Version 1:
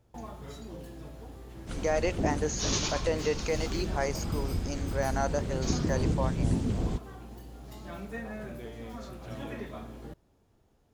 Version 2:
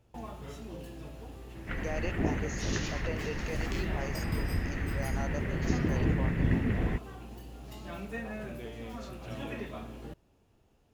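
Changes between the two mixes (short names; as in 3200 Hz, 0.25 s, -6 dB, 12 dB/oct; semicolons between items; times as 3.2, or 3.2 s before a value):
speech -10.0 dB; second sound: add synth low-pass 1900 Hz, resonance Q 6.9; master: add bell 2700 Hz +7.5 dB 0.32 oct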